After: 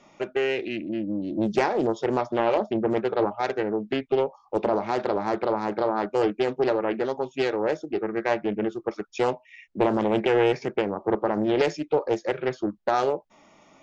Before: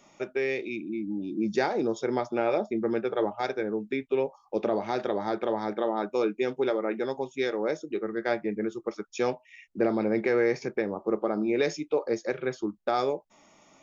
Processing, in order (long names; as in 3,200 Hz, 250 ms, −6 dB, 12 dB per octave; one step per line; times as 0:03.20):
high-frequency loss of the air 99 metres
highs frequency-modulated by the lows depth 0.41 ms
level +4 dB